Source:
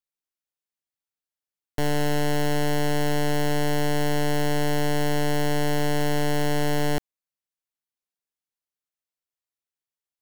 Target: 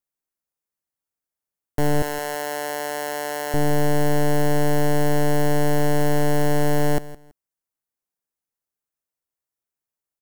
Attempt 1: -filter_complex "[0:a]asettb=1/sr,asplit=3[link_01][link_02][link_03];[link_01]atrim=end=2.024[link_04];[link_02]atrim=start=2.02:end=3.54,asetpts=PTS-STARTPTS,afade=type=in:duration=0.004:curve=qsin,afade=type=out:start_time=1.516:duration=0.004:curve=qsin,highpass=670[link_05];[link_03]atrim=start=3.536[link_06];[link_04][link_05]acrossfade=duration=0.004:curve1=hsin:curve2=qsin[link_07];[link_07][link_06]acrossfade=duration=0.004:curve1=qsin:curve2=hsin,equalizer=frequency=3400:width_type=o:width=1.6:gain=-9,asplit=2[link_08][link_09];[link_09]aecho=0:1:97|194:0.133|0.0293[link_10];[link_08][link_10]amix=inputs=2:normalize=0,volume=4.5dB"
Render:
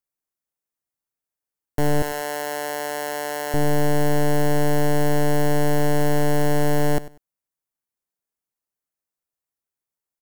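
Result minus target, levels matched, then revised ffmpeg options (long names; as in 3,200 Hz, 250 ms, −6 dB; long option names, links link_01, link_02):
echo 68 ms early
-filter_complex "[0:a]asettb=1/sr,asplit=3[link_01][link_02][link_03];[link_01]atrim=end=2.024[link_04];[link_02]atrim=start=2.02:end=3.54,asetpts=PTS-STARTPTS,afade=type=in:duration=0.004:curve=qsin,afade=type=out:start_time=1.516:duration=0.004:curve=qsin,highpass=670[link_05];[link_03]atrim=start=3.536[link_06];[link_04][link_05]acrossfade=duration=0.004:curve1=hsin:curve2=qsin[link_07];[link_07][link_06]acrossfade=duration=0.004:curve1=qsin:curve2=hsin,equalizer=frequency=3400:width_type=o:width=1.6:gain=-9,asplit=2[link_08][link_09];[link_09]aecho=0:1:165|330:0.133|0.0293[link_10];[link_08][link_10]amix=inputs=2:normalize=0,volume=4.5dB"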